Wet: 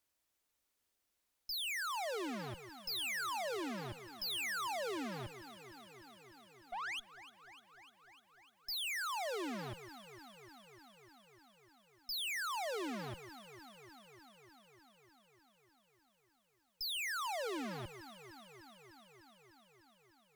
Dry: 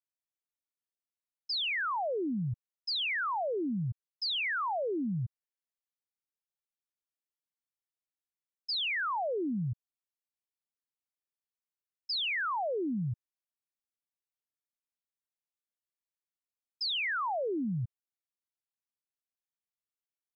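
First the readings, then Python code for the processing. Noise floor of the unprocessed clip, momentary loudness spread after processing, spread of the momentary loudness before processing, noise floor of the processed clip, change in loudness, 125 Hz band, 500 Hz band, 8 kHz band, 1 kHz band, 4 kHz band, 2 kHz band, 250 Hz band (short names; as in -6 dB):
under -85 dBFS, 21 LU, 9 LU, -83 dBFS, -7.5 dB, -14.5 dB, -7.5 dB, n/a, -6.5 dB, -6.5 dB, -6.5 dB, -10.0 dB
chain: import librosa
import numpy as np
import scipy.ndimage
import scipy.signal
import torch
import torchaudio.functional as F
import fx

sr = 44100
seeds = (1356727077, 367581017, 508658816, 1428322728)

y = fx.spec_paint(x, sr, seeds[0], shape='rise', start_s=6.72, length_s=0.28, low_hz=660.0, high_hz=3500.0, level_db=-50.0)
y = fx.low_shelf(y, sr, hz=340.0, db=6.0)
y = fx.tube_stage(y, sr, drive_db=52.0, bias=0.35)
y = fx.peak_eq(y, sr, hz=150.0, db=-10.0, octaves=0.83)
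y = fx.echo_alternate(y, sr, ms=150, hz=1100.0, feedback_pct=87, wet_db=-14.0)
y = y * librosa.db_to_amplitude(13.0)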